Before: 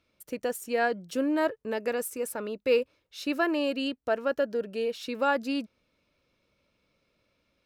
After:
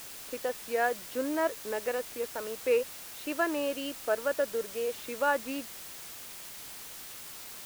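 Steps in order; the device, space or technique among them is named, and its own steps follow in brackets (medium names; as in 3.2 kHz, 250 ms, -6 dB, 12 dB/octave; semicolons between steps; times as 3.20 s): wax cylinder (band-pass 370–2500 Hz; wow and flutter; white noise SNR 11 dB); trim -1 dB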